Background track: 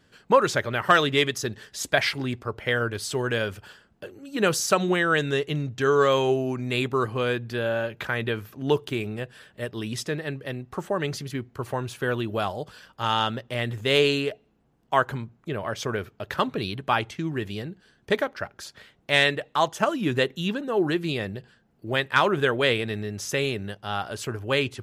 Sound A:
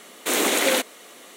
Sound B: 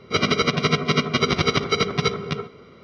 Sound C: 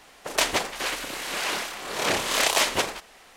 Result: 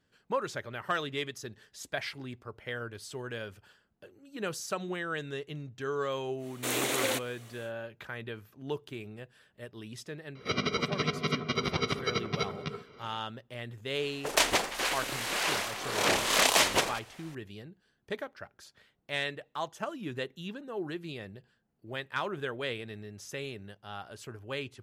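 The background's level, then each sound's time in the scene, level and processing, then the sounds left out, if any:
background track -13 dB
6.37 s: add A -9.5 dB, fades 0.10 s
10.35 s: add B -10.5 dB + tape noise reduction on one side only encoder only
13.99 s: add C -2 dB

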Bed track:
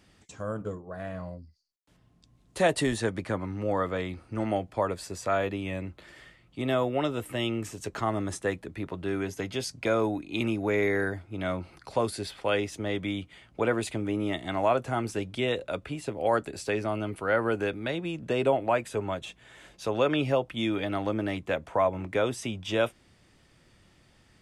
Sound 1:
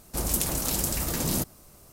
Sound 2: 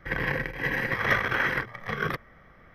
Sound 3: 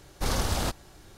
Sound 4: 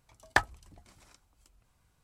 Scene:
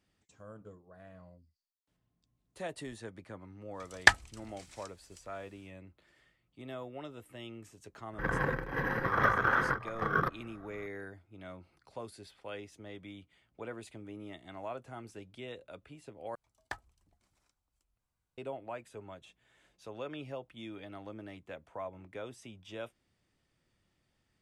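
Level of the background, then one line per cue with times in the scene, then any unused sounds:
bed track -16.5 dB
3.71 s: add 4 -1.5 dB, fades 0.10 s + high-order bell 4 kHz +9.5 dB 2.8 oct
8.13 s: add 2 -2.5 dB + resonant high shelf 1.7 kHz -7 dB, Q 3
16.35 s: replace with 4 -16.5 dB
not used: 1, 3

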